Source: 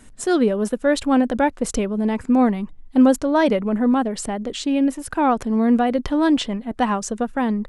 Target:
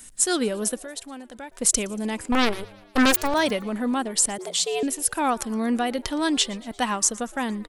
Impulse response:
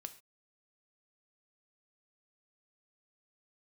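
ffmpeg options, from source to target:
-filter_complex "[0:a]asettb=1/sr,asplit=3[a][b][c];[a]atrim=end=0.784[d];[b]atrim=start=0.78:end=1.52,asetpts=PTS-STARTPTS,afade=t=in:d=0.004:c=qsin,afade=t=out:st=0.736:d=0.004:c=qsin,acompressor=threshold=-38dB:ratio=2.5[e];[c]atrim=start=1.516[f];[d][e]acrossfade=d=0.004:c1=hsin:c2=qsin[g];[g][f]acrossfade=d=0.004:c1=qsin:c2=hsin,asettb=1/sr,asplit=3[h][i][j];[h]atrim=end=2.324[k];[i]atrim=start=2.32:end=3.34,asetpts=PTS-STARTPTS,afade=t=in:d=0.004:c=qsin,afade=t=out:st=1.016:d=0.004:c=qsin,aeval=exprs='0.531*(cos(1*acos(clip(val(0)/0.531,-1,1)))-cos(1*PI/2))+0.0841*(cos(7*acos(clip(val(0)/0.531,-1,1)))-cos(7*PI/2))+0.119*(cos(8*acos(clip(val(0)/0.531,-1,1)))-cos(8*PI/2))':c=same[l];[j]atrim=start=3.336[m];[k][l]acrossfade=d=0.004:c1=hsin:c2=qsin[n];[n][m]acrossfade=d=0.004:c1=qsin:c2=hsin,crystalizer=i=8:c=0,asplit=2[o][p];[p]asplit=4[q][r][s][t];[q]adelay=116,afreqshift=100,volume=-23dB[u];[r]adelay=232,afreqshift=200,volume=-27.9dB[v];[s]adelay=348,afreqshift=300,volume=-32.8dB[w];[t]adelay=464,afreqshift=400,volume=-37.6dB[x];[u][v][w][x]amix=inputs=4:normalize=0[y];[o][y]amix=inputs=2:normalize=0,asettb=1/sr,asplit=3[z][aa][ab];[z]atrim=end=4.384[ac];[aa]atrim=start=4.38:end=4.83,asetpts=PTS-STARTPTS,afade=t=in:d=0.004:c=qsin,afade=t=out:st=0.446:d=0.004:c=qsin,afreqshift=160[ad];[ab]atrim=start=4.826[ae];[ac][ad]acrossfade=d=0.004:c1=hsin:c2=qsin[af];[af][ae]acrossfade=d=0.004:c1=qsin:c2=hsin,volume=-8dB"

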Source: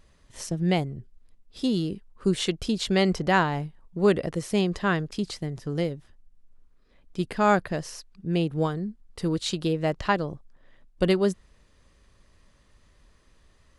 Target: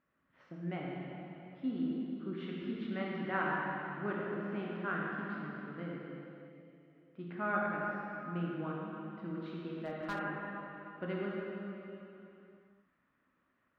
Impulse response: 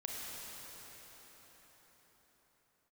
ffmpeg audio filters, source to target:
-filter_complex "[0:a]highpass=190,equalizer=f=260:t=q:w=4:g=7,equalizer=f=450:t=q:w=4:g=-8,equalizer=f=850:t=q:w=4:g=-3,equalizer=f=1.4k:t=q:w=4:g=8,lowpass=f=2.4k:w=0.5412,lowpass=f=2.4k:w=1.3066[a];[1:a]atrim=start_sample=2205,asetrate=79380,aresample=44100[b];[a][b]afir=irnorm=-1:irlink=0,asettb=1/sr,asplit=3[c][d][e];[c]atrim=end=9.694[f];[d]atrim=start=9.69:end=10.19,asetpts=PTS-STARTPTS,afade=t=in:d=0.004:c=qsin,afade=t=out:st=0.496:d=0.004:c=qsin,asoftclip=type=hard:threshold=-26dB[g];[e]atrim=start=10.186[h];[f][g]acrossfade=d=0.004:c1=hsin:c2=qsin[i];[i][h]acrossfade=d=0.004:c1=qsin:c2=hsin,volume=-7dB"

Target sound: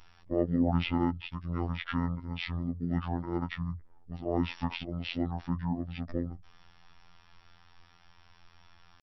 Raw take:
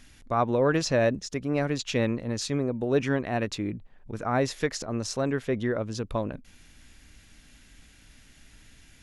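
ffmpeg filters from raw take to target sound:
-af "asetrate=22050,aresample=44100,atempo=2,afftfilt=real='hypot(re,im)*cos(PI*b)':imag='0':win_size=2048:overlap=0.75"

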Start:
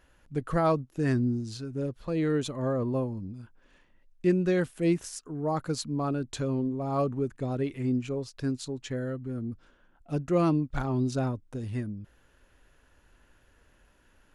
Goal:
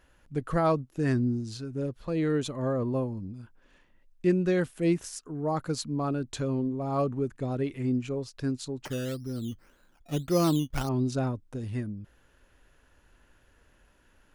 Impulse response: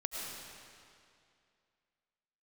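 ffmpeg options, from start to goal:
-filter_complex "[0:a]asettb=1/sr,asplit=3[a][b][c];[a]atrim=end=8.854[d];[b]atrim=start=8.85:end=10.89,asetpts=PTS-STARTPTS,afade=t=in:d=0.004:c=qsin,afade=t=out:st=2.036:d=0.004:c=qsin,acrusher=samples=11:mix=1:aa=0.000001:lfo=1:lforange=6.6:lforate=1.8[e];[c]atrim=start=10.886[f];[d][e]acrossfade=d=0.004:c1=hsin:c2=qsin[g];[g][f]acrossfade=d=0.004:c1=qsin:c2=hsin"

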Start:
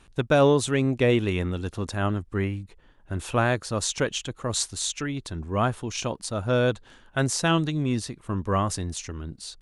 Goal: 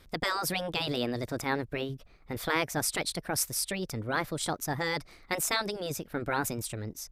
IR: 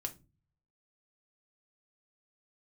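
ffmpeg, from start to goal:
-af "asetrate=59535,aresample=44100,afftfilt=real='re*lt(hypot(re,im),0.355)':imag='im*lt(hypot(re,im),0.355)':win_size=1024:overlap=0.75,volume=-2dB"

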